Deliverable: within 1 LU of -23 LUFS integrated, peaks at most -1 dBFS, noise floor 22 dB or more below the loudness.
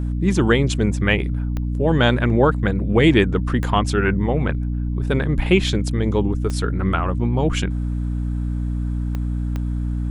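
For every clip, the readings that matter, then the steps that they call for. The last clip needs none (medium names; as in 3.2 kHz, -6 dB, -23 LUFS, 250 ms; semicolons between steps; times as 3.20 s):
clicks found 5; hum 60 Hz; highest harmonic 300 Hz; hum level -20 dBFS; loudness -20.5 LUFS; peak level -2.0 dBFS; loudness target -23.0 LUFS
-> de-click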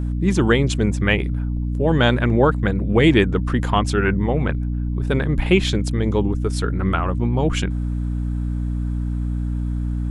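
clicks found 0; hum 60 Hz; highest harmonic 300 Hz; hum level -20 dBFS
-> hum notches 60/120/180/240/300 Hz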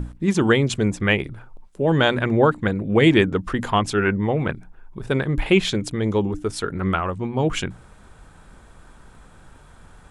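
hum not found; loudness -21.0 LUFS; peak level -3.5 dBFS; loudness target -23.0 LUFS
-> trim -2 dB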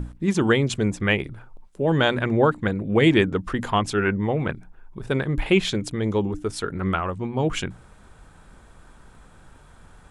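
loudness -23.0 LUFS; peak level -5.5 dBFS; noise floor -51 dBFS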